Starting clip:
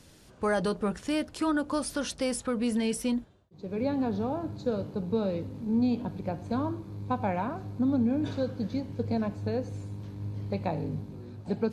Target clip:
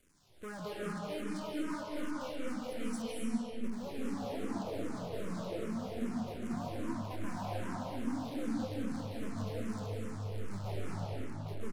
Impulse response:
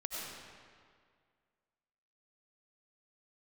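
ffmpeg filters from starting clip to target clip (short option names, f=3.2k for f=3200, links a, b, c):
-filter_complex "[0:a]asettb=1/sr,asplit=3[a][b][c];[a]atrim=end=1.794[d];[b]atrim=start=1.79:end=2.43,asetpts=PTS-STARTPTS,afade=t=in:d=0.004:c=qsin,afade=t=out:st=0.636:d=0.004:c=qsin,lowpass=2.9k[e];[c]atrim=start=2.426[f];[d][e]acrossfade=d=0.004:c1=hsin:c2=qsin[g];[g][f]acrossfade=d=0.004:c1=qsin:c2=hsin,acrusher=bits=7:dc=4:mix=0:aa=0.000001,asoftclip=type=tanh:threshold=-28.5dB,aecho=1:1:231:0.355[h];[1:a]atrim=start_sample=2205,asetrate=24255,aresample=44100[i];[h][i]afir=irnorm=-1:irlink=0,asplit=2[j][k];[k]afreqshift=-2.5[l];[j][l]amix=inputs=2:normalize=1,volume=-8.5dB"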